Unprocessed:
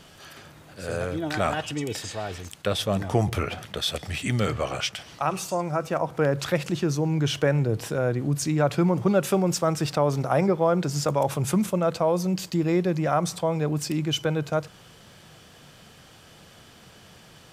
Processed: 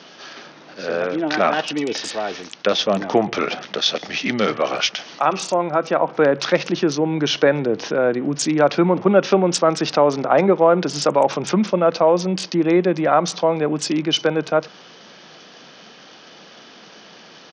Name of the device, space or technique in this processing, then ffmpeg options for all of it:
Bluetooth headset: -af "highpass=f=210:w=0.5412,highpass=f=210:w=1.3066,aresample=16000,aresample=44100,volume=8dB" -ar 48000 -c:a sbc -b:a 64k

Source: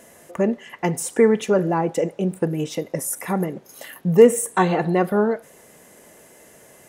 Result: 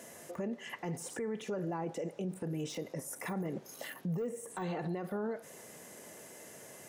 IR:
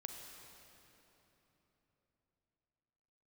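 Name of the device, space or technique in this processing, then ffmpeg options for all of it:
broadcast voice chain: -af "highpass=f=82:w=0.5412,highpass=f=82:w=1.3066,deesser=0.9,acompressor=threshold=-26dB:ratio=5,equalizer=f=5.6k:t=o:w=1:g=3.5,alimiter=level_in=3dB:limit=-24dB:level=0:latency=1:release=34,volume=-3dB,volume=-3dB"

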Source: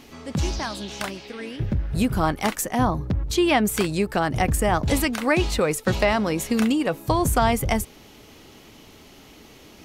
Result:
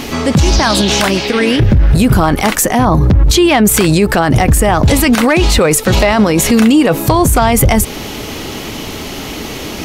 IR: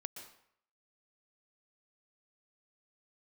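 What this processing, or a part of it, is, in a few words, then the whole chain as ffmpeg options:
loud club master: -af "acompressor=threshold=-25dB:ratio=1.5,asoftclip=type=hard:threshold=-14.5dB,alimiter=level_in=25dB:limit=-1dB:release=50:level=0:latency=1,volume=-1dB"

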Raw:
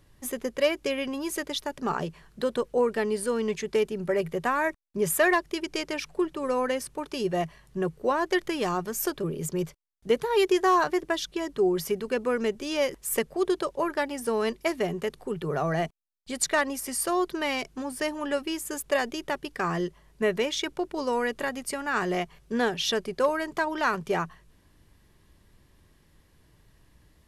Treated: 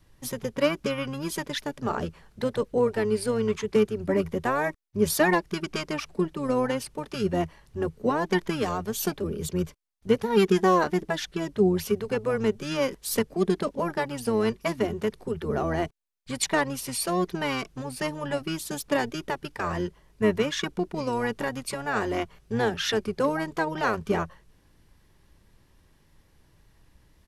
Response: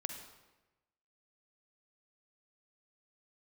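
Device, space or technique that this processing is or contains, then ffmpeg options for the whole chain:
octave pedal: -filter_complex "[0:a]adynamicequalizer=threshold=0.01:dfrequency=430:dqfactor=5.3:tfrequency=430:tqfactor=5.3:attack=5:release=100:ratio=0.375:range=2:mode=boostabove:tftype=bell,asplit=2[a][b];[b]asetrate=22050,aresample=44100,atempo=2,volume=-4dB[c];[a][c]amix=inputs=2:normalize=0,volume=-1.5dB"

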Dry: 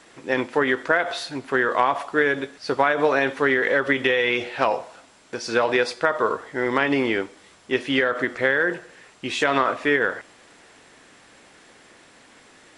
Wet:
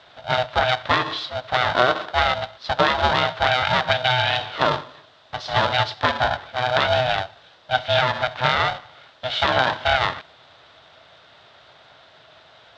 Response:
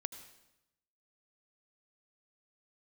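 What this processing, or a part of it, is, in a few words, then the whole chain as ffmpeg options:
ring modulator pedal into a guitar cabinet: -af "aeval=exprs='val(0)*sgn(sin(2*PI*380*n/s))':c=same,highpass=92,equalizer=f=210:t=q:w=4:g=-9,equalizer=f=300:t=q:w=4:g=-4,equalizer=f=630:t=q:w=4:g=7,equalizer=f=1.4k:t=q:w=4:g=3,equalizer=f=2.3k:t=q:w=4:g=-5,equalizer=f=3.6k:t=q:w=4:g=9,lowpass=f=4.5k:w=0.5412,lowpass=f=4.5k:w=1.3066"

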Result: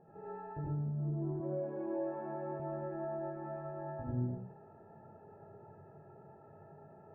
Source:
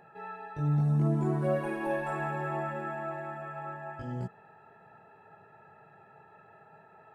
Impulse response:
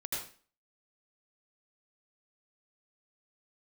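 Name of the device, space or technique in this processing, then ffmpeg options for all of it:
television next door: -filter_complex "[0:a]acompressor=threshold=-39dB:ratio=4,lowpass=540[a];[1:a]atrim=start_sample=2205[b];[a][b]afir=irnorm=-1:irlink=0,asettb=1/sr,asplit=3[c][d][e];[c]atrim=end=1.404[f];[d]atrim=start=1.4:end=2.6,asetpts=PTS-STARTPTS,afade=t=in:d=0.004:c=qsin,afade=t=out:st=1.196:d=0.004:c=qsin,highpass=180[g];[e]atrim=start=2.596[h];[f][g]acrossfade=d=0.004:c1=hsin:c2=qsin[i];[i][h]acrossfade=d=0.004:c1=qsin:c2=hsin,volume=3.5dB"

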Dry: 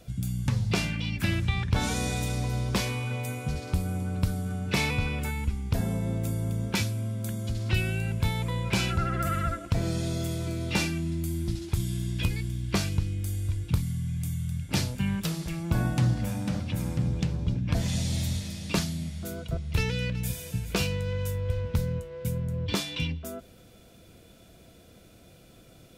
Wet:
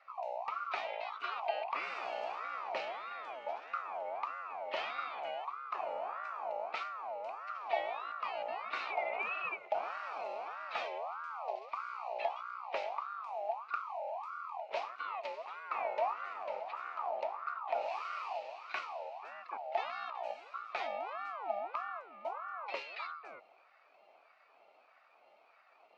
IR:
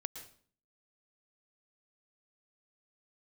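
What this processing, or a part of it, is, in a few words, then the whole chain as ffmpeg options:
voice changer toy: -af "aeval=exprs='val(0)*sin(2*PI*1000*n/s+1000*0.3/1.6*sin(2*PI*1.6*n/s))':c=same,highpass=580,equalizer=f=680:t=q:w=4:g=5,equalizer=f=1k:t=q:w=4:g=-9,equalizer=f=1.6k:t=q:w=4:g=-9,equalizer=f=2.4k:t=q:w=4:g=8,equalizer=f=3.4k:t=q:w=4:g=-9,lowpass=f=3.5k:w=0.5412,lowpass=f=3.5k:w=1.3066,volume=-5dB"

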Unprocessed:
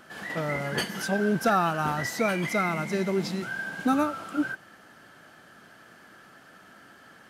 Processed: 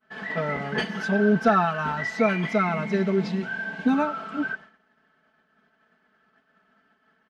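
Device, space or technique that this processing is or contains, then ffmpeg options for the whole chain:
hearing-loss simulation: -filter_complex "[0:a]asettb=1/sr,asplit=3[a][b][c];[a]atrim=end=3.284[d];[b]atrim=start=3.28:end=3.94,asetpts=PTS-STARTPTS,afade=t=in:d=0.004:c=qsin,afade=t=out:st=0.656:d=0.004:c=qsin,bandreject=f=1.3k:w=5.5[e];[c]atrim=start=3.936[f];[d][e]acrossfade=d=0.004:c1=hsin:c2=qsin[g];[g][f]acrossfade=d=0.004:c1=qsin:c2=hsin,lowpass=3.3k,aecho=1:1:4.6:0.9,agate=range=-33dB:threshold=-38dB:ratio=3:detection=peak,asettb=1/sr,asplit=3[h][i][j];[h]atrim=end=1.654[k];[i]atrim=start=1.65:end=2.18,asetpts=PTS-STARTPTS,afade=t=in:d=0.004:c=qsin,afade=t=out:st=0.526:d=0.004:c=qsin,equalizer=f=360:t=o:w=2.1:g=-5.5[l];[j]atrim=start=2.176[m];[k][l]acrossfade=d=0.004:c1=hsin:c2=qsin[n];[n][m]acrossfade=d=0.004:c1=qsin:c2=hsin"

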